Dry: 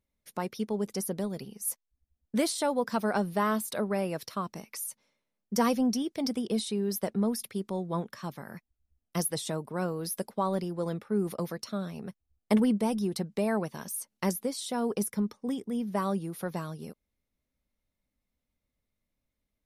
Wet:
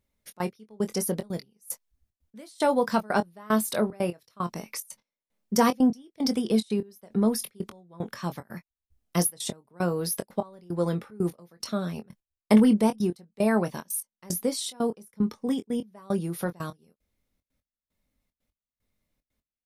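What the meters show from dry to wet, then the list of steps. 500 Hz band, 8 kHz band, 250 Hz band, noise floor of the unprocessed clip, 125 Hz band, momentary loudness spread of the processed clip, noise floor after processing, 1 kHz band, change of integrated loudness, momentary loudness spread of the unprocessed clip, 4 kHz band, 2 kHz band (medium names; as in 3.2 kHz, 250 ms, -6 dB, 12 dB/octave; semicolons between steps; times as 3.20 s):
+3.0 dB, +3.0 dB, +4.0 dB, -84 dBFS, +3.0 dB, 15 LU, under -85 dBFS, +2.5 dB, +3.5 dB, 10 LU, +2.5 dB, +3.0 dB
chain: trance gate "xxx.x...x" 150 bpm -24 dB; doubling 23 ms -10 dB; trim +5 dB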